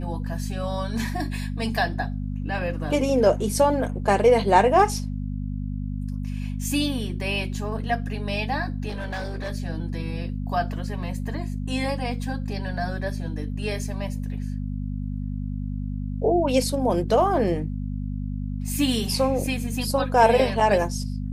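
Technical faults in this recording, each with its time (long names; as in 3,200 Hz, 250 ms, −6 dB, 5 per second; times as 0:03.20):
mains hum 50 Hz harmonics 5 −29 dBFS
0:08.88–0:09.52: clipping −26 dBFS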